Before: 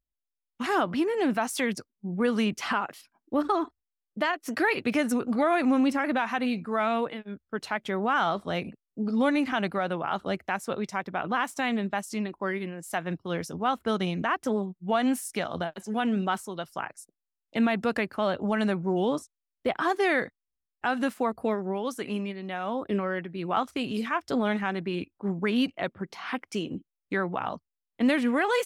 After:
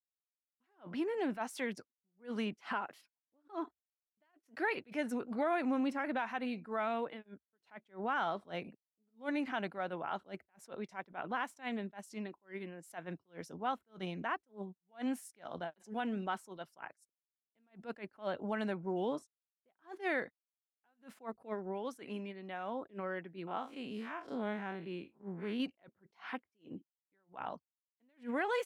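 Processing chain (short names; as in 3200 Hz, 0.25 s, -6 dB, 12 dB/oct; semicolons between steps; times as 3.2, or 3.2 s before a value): 23.47–25.6 time blur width 93 ms; HPF 260 Hz 6 dB/oct; gate -52 dBFS, range -22 dB; high shelf 3700 Hz -9 dB; notch 1200 Hz, Q 12; attack slew limiter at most 270 dB/s; gain -7.5 dB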